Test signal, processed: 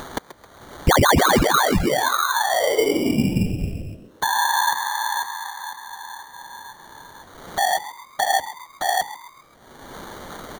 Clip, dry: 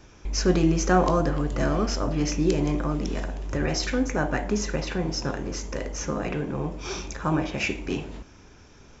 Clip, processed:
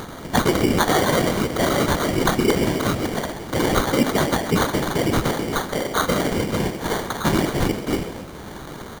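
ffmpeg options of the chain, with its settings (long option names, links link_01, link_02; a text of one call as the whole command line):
ffmpeg -i in.wav -filter_complex "[0:a]acrossover=split=200|460[link_01][link_02][link_03];[link_01]acompressor=threshold=-33dB:ratio=4[link_04];[link_02]acompressor=threshold=-28dB:ratio=4[link_05];[link_03]acompressor=threshold=-28dB:ratio=4[link_06];[link_04][link_05][link_06]amix=inputs=3:normalize=0,highpass=frequency=90:width=0.5412,highpass=frequency=90:width=1.3066,lowshelf=frequency=160:gain=3,bandreject=frequency=60:width_type=h:width=6,bandreject=frequency=120:width_type=h:width=6,bandreject=frequency=180:width_type=h:width=6,bandreject=frequency=240:width_type=h:width=6,bandreject=frequency=300:width_type=h:width=6,bandreject=frequency=360:width_type=h:width=6,bandreject=frequency=420:width_type=h:width=6,bandreject=frequency=480:width_type=h:width=6,bandreject=frequency=540:width_type=h:width=6,acompressor=mode=upward:threshold=-35dB:ratio=2.5,aemphasis=mode=production:type=50fm,aeval=exprs='0.501*(abs(mod(val(0)/0.501+3,4)-2)-1)':channel_layout=same,afftfilt=real='hypot(re,im)*cos(2*PI*random(0))':imag='hypot(re,im)*sin(2*PI*random(1))':win_size=512:overlap=0.75,acrusher=samples=17:mix=1:aa=0.000001,asplit=5[link_07][link_08][link_09][link_10][link_11];[link_08]adelay=133,afreqshift=110,volume=-14.5dB[link_12];[link_09]adelay=266,afreqshift=220,volume=-21.6dB[link_13];[link_10]adelay=399,afreqshift=330,volume=-28.8dB[link_14];[link_11]adelay=532,afreqshift=440,volume=-35.9dB[link_15];[link_07][link_12][link_13][link_14][link_15]amix=inputs=5:normalize=0,alimiter=level_in=20.5dB:limit=-1dB:release=50:level=0:latency=1,volume=-6.5dB" out.wav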